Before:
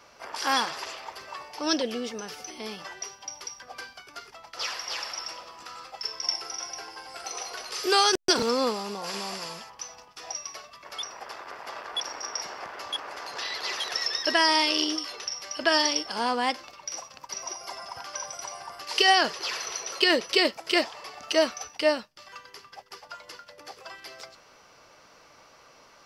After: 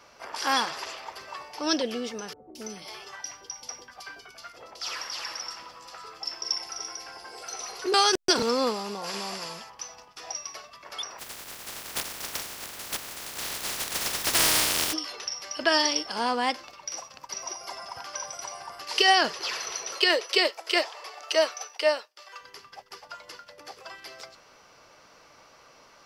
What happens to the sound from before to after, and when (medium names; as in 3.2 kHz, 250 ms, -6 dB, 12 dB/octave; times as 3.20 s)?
2.33–7.94 s: three bands offset in time lows, highs, mids 220/280 ms, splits 660/2900 Hz
11.18–14.92 s: spectral contrast reduction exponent 0.13
19.98–22.41 s: steep high-pass 370 Hz